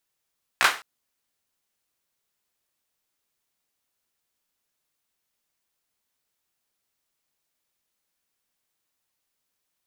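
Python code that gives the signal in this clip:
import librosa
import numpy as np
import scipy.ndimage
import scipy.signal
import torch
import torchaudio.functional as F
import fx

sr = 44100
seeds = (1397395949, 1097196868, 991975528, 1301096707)

y = fx.drum_clap(sr, seeds[0], length_s=0.21, bursts=3, spacing_ms=16, hz=1400.0, decay_s=0.33)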